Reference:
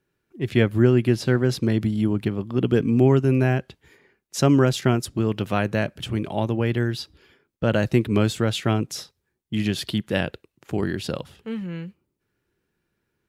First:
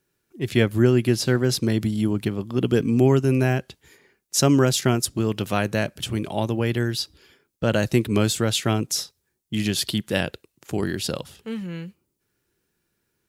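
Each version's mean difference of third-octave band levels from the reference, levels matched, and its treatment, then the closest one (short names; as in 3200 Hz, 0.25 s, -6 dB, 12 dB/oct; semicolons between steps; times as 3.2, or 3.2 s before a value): 2.5 dB: tone controls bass -1 dB, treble +10 dB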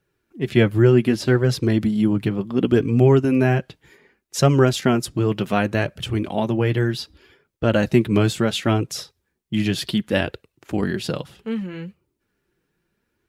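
1.0 dB: flange 0.67 Hz, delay 1.4 ms, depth 5.4 ms, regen -32%; gain +6.5 dB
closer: second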